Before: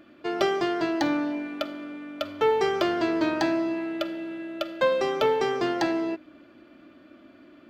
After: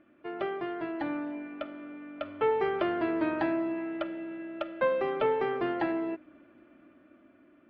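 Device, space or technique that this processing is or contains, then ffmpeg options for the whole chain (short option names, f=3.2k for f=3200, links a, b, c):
action camera in a waterproof case: -af "lowpass=f=2.6k:w=0.5412,lowpass=f=2.6k:w=1.3066,dynaudnorm=f=480:g=7:m=5dB,volume=-9dB" -ar 48000 -c:a aac -b:a 48k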